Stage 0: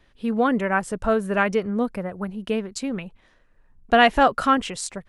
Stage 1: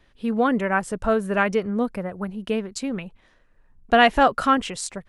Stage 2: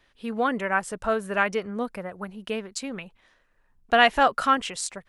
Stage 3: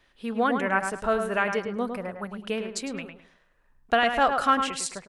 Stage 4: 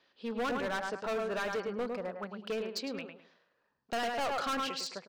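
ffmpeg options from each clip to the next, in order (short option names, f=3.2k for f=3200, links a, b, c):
-af anull
-af "lowshelf=f=470:g=-9.5"
-filter_complex "[0:a]alimiter=limit=-10.5dB:level=0:latency=1:release=289,asplit=2[a][b];[b]adelay=105,lowpass=f=2.7k:p=1,volume=-6dB,asplit=2[c][d];[d]adelay=105,lowpass=f=2.7k:p=1,volume=0.29,asplit=2[e][f];[f]adelay=105,lowpass=f=2.7k:p=1,volume=0.29,asplit=2[g][h];[h]adelay=105,lowpass=f=2.7k:p=1,volume=0.29[i];[c][e][g][i]amix=inputs=4:normalize=0[j];[a][j]amix=inputs=2:normalize=0"
-af "highpass=200,equalizer=f=490:t=q:w=4:g=4,equalizer=f=2k:t=q:w=4:g=-4,equalizer=f=4.6k:t=q:w=4:g=7,lowpass=f=5.9k:w=0.5412,lowpass=f=5.9k:w=1.3066,asoftclip=type=hard:threshold=-26dB,volume=-4.5dB"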